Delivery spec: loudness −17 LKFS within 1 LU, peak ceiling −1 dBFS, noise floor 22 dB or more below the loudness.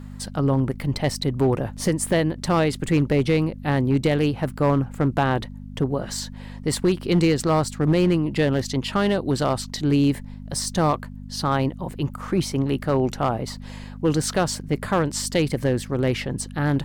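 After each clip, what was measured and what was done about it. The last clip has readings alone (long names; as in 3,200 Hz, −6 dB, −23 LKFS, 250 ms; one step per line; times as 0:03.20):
share of clipped samples 0.9%; peaks flattened at −12.5 dBFS; mains hum 50 Hz; hum harmonics up to 250 Hz; level of the hum −35 dBFS; integrated loudness −23.0 LKFS; sample peak −12.5 dBFS; target loudness −17.0 LKFS
→ clipped peaks rebuilt −12.5 dBFS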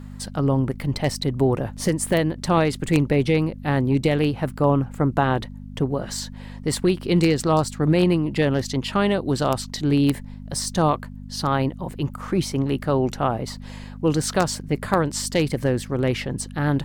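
share of clipped samples 0.0%; mains hum 50 Hz; hum harmonics up to 250 Hz; level of the hum −35 dBFS
→ hum removal 50 Hz, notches 5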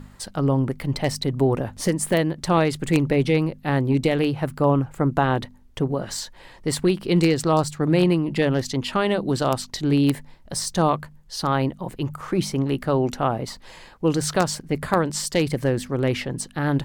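mains hum none found; integrated loudness −23.0 LKFS; sample peak −3.5 dBFS; target loudness −17.0 LKFS
→ level +6 dB
brickwall limiter −1 dBFS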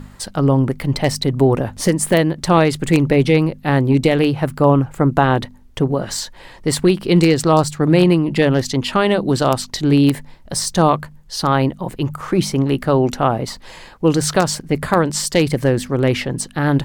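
integrated loudness −17.0 LKFS; sample peak −1.0 dBFS; background noise floor −42 dBFS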